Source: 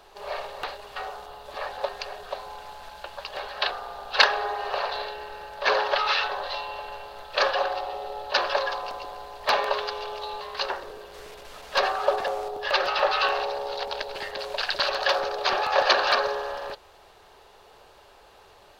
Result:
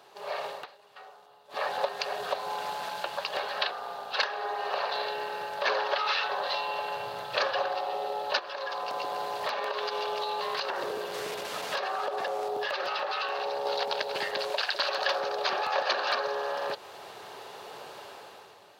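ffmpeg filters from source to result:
-filter_complex "[0:a]asettb=1/sr,asplit=3[s0][s1][s2];[s0]atrim=end=6.964[s3];[s1]atrim=start=6.96:end=7.75,asetpts=PTS-STARTPTS,afade=t=in:d=0.004:c=qsin,afade=t=out:st=0.786:d=0.004:c=qsin,equalizer=f=120:w=1.5:g=12[s4];[s2]atrim=start=7.746[s5];[s3][s4]acrossfade=d=0.004:c1=hsin:c2=qsin[s6];[s6][s5]acrossfade=d=0.004:c1=qsin:c2=hsin,asplit=3[s7][s8][s9];[s7]afade=t=out:st=8.38:d=0.02[s10];[s8]acompressor=threshold=0.0224:ratio=12:attack=3.2:release=140:knee=1:detection=peak,afade=t=in:st=8.38:d=0.02,afade=t=out:st=13.65:d=0.02[s11];[s9]afade=t=in:st=13.65:d=0.02[s12];[s10][s11][s12]amix=inputs=3:normalize=0,asettb=1/sr,asplit=3[s13][s14][s15];[s13]atrim=end=14.504[s16];[s14]atrim=start=14.5:end=14.98,asetpts=PTS-STARTPTS,afade=t=in:d=0.004:c=qsin,afade=t=out:st=0.476:d=0.004:c=qsin,highpass=320[s17];[s15]atrim=start=14.976[s18];[s16][s17]acrossfade=d=0.004:c1=hsin:c2=qsin[s19];[s19][s18]acrossfade=d=0.004:c1=qsin:c2=hsin,asplit=3[s20][s21][s22];[s20]atrim=end=0.66,asetpts=PTS-STARTPTS,afade=t=out:st=0.47:d=0.19:silence=0.0707946[s23];[s21]atrim=start=0.66:end=1.49,asetpts=PTS-STARTPTS,volume=0.0708[s24];[s22]atrim=start=1.49,asetpts=PTS-STARTPTS,afade=t=in:d=0.19:silence=0.0707946[s25];[s23][s24][s25]concat=n=3:v=0:a=1,dynaudnorm=f=110:g=11:m=3.76,highpass=f=120:w=0.5412,highpass=f=120:w=1.3066,acompressor=threshold=0.0447:ratio=2.5,volume=0.75"

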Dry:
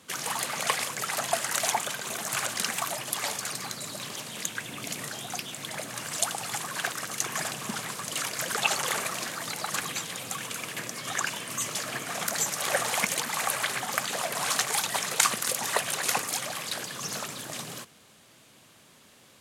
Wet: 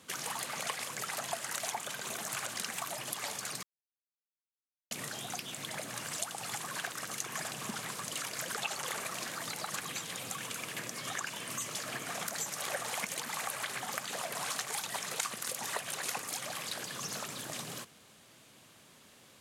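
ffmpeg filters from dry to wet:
-filter_complex "[0:a]asplit=3[s0][s1][s2];[s0]atrim=end=3.63,asetpts=PTS-STARTPTS,afade=t=out:st=3.626:d=0.004:c=hsin[s3];[s1]atrim=start=3.63:end=4.91,asetpts=PTS-STARTPTS,volume=0[s4];[s2]atrim=start=4.91,asetpts=PTS-STARTPTS,afade=t=in:d=0.004:c=hsin[s5];[s3][s4][s5]concat=n=3:v=0:a=1,acompressor=threshold=0.02:ratio=2.5,volume=0.75"

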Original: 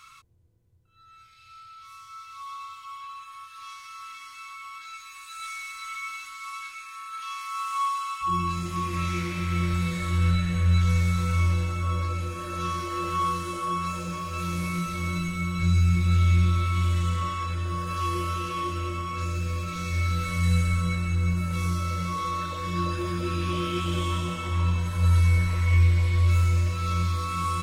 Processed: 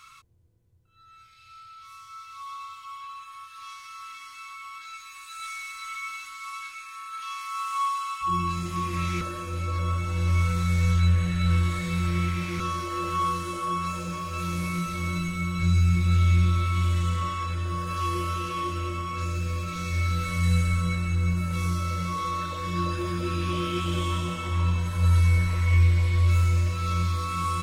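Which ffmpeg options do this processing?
-filter_complex "[0:a]asplit=3[s0][s1][s2];[s0]atrim=end=9.212[s3];[s1]atrim=start=9.208:end=12.602,asetpts=PTS-STARTPTS,areverse[s4];[s2]atrim=start=12.598[s5];[s3][s4]acrossfade=d=0.004:c1=hsin:c2=hsin[s6];[s6][s5]acrossfade=d=0.004:c1=hsin:c2=hsin"

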